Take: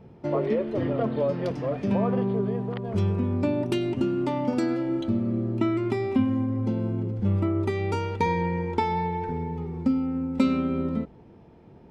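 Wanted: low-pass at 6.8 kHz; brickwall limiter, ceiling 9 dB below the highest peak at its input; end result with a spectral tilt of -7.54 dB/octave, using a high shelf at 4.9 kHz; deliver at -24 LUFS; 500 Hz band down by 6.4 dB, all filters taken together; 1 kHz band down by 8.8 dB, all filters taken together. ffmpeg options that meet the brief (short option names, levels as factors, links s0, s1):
-af "lowpass=6800,equalizer=f=500:t=o:g=-7,equalizer=f=1000:t=o:g=-8.5,highshelf=f=4900:g=3.5,volume=2.11,alimiter=limit=0.178:level=0:latency=1"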